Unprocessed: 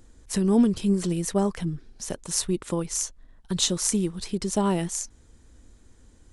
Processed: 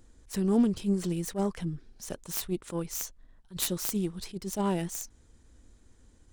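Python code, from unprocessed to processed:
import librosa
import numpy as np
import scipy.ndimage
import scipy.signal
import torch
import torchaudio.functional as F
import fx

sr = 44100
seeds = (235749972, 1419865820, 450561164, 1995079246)

y = fx.self_delay(x, sr, depth_ms=0.17)
y = fx.attack_slew(y, sr, db_per_s=280.0)
y = F.gain(torch.from_numpy(y), -4.5).numpy()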